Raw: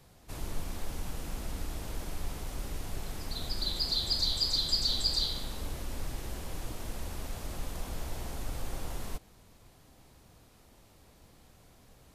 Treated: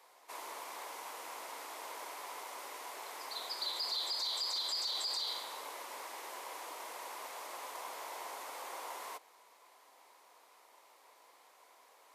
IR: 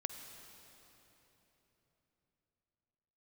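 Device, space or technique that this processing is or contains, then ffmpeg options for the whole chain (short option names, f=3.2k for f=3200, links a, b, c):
laptop speaker: -af "highpass=f=440:w=0.5412,highpass=f=440:w=1.3066,equalizer=f=1k:t=o:w=0.51:g=11.5,equalizer=f=2.1k:t=o:w=0.33:g=6,alimiter=level_in=2dB:limit=-24dB:level=0:latency=1:release=12,volume=-2dB,volume=-2.5dB"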